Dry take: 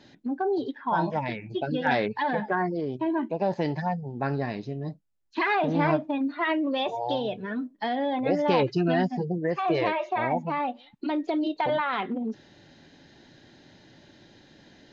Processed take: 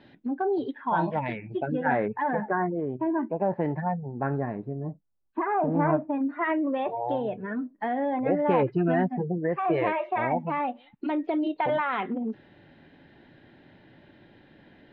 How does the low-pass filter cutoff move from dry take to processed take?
low-pass filter 24 dB per octave
0:01.19 3,300 Hz
0:01.86 1,800 Hz
0:04.30 1,800 Hz
0:04.76 1,300 Hz
0:05.53 1,300 Hz
0:06.41 2,100 Hz
0:09.48 2,100 Hz
0:10.18 2,900 Hz

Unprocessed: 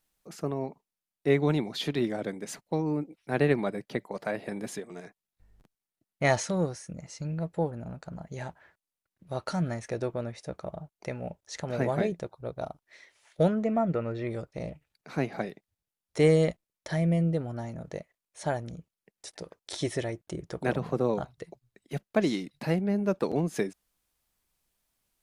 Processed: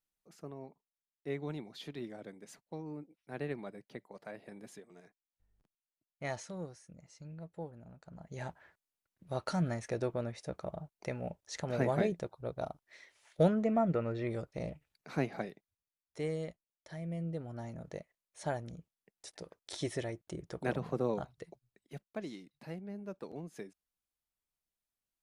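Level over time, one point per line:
0:07.98 −14.5 dB
0:08.46 −3 dB
0:15.14 −3 dB
0:16.27 −15.5 dB
0:17.01 −15.5 dB
0:17.67 −6 dB
0:21.51 −6 dB
0:22.24 −16.5 dB

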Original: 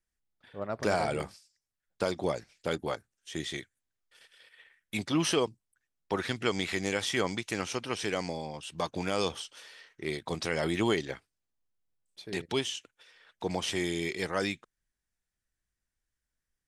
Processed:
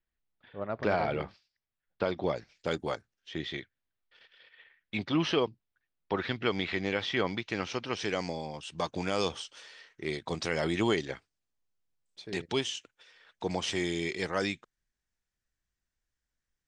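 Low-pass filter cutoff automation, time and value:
low-pass filter 24 dB per octave
0:02.11 3,800 Hz
0:02.86 8,300 Hz
0:03.34 4,200 Hz
0:07.32 4,200 Hz
0:08.49 7,800 Hz

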